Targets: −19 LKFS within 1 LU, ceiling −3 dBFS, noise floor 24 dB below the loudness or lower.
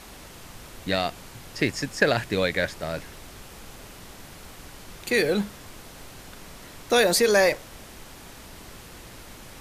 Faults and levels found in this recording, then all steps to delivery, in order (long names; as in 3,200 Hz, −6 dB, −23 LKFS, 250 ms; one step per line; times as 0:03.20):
background noise floor −45 dBFS; target noise floor −48 dBFS; integrated loudness −24.0 LKFS; sample peak −6.5 dBFS; target loudness −19.0 LKFS
→ noise reduction from a noise print 6 dB
level +5 dB
brickwall limiter −3 dBFS